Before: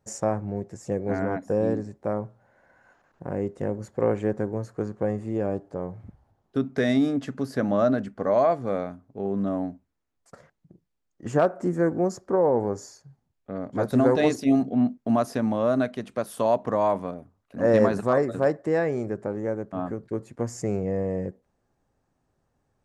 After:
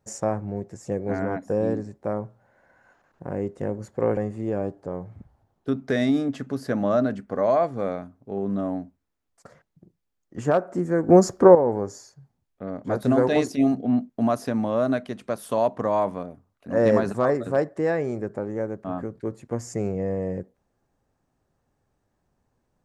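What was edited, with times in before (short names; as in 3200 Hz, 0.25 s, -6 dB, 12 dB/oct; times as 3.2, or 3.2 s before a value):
4.17–5.05 cut
11.97–12.43 gain +10.5 dB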